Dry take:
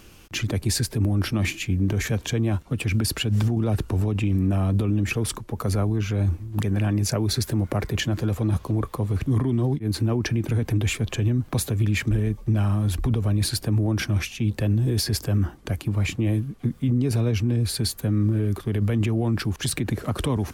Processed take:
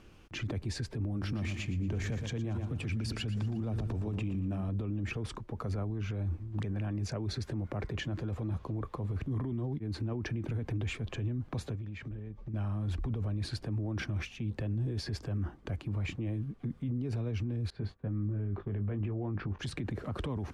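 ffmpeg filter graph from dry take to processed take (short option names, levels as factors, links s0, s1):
-filter_complex "[0:a]asettb=1/sr,asplit=3[s0][s1][s2];[s0]atrim=end=1.114[s3];[s1]atrim=start=1.11:end=4.69,asetpts=PTS-STARTPTS,afade=t=in:d=0.004:c=qsin,afade=t=out:st=3.576:d=0.004:c=qsin,bass=f=250:g=3,treble=f=4000:g=6,bandreject=f=50:t=h:w=6,bandreject=f=100:t=h:w=6,bandreject=f=150:t=h:w=6,aecho=1:1:117|234|351|468|585:0.316|0.139|0.0612|0.0269|0.0119,atrim=end_sample=157878[s4];[s2]atrim=start=4.686[s5];[s3][s4]acrossfade=d=0.004:c1=hsin:c2=qsin[s6];[s6][s5]acrossfade=d=0.004:c1=qsin:c2=hsin,asettb=1/sr,asplit=3[s7][s8][s9];[s7]atrim=end=11.754[s10];[s8]atrim=start=11.75:end=12.54,asetpts=PTS-STARTPTS,afade=t=in:d=0.004:c=qsin,afade=t=out:st=0.786:d=0.004:c=qsin,lowpass=6000,acompressor=threshold=0.0316:ratio=16:attack=3.2:release=140:knee=1:detection=peak[s11];[s9]atrim=start=12.536[s12];[s10][s11]acrossfade=d=0.004:c1=hsin:c2=qsin[s13];[s13][s12]acrossfade=d=0.004:c1=qsin:c2=hsin,asettb=1/sr,asplit=3[s14][s15][s16];[s14]atrim=end=17.704[s17];[s15]atrim=start=17.7:end=19.59,asetpts=PTS-STARTPTS,afade=t=in:d=0.004:c=qsin,afade=t=out:st=1.886:d=0.004:c=qsin,lowpass=2000,agate=range=0.0224:threshold=0.0126:ratio=3:release=100:detection=peak,asplit=2[s18][s19];[s19]adelay=20,volume=0.422[s20];[s18][s20]amix=inputs=2:normalize=0,atrim=end_sample=83349[s21];[s16]atrim=start=19.586[s22];[s17][s21]acrossfade=d=0.004:c1=hsin:c2=qsin[s23];[s23][s22]acrossfade=d=0.004:c1=qsin:c2=hsin,acrossover=split=9700[s24][s25];[s25]acompressor=threshold=0.00178:ratio=4:attack=1:release=60[s26];[s24][s26]amix=inputs=2:normalize=0,aemphasis=mode=reproduction:type=75fm,alimiter=limit=0.1:level=0:latency=1:release=24,volume=0.422"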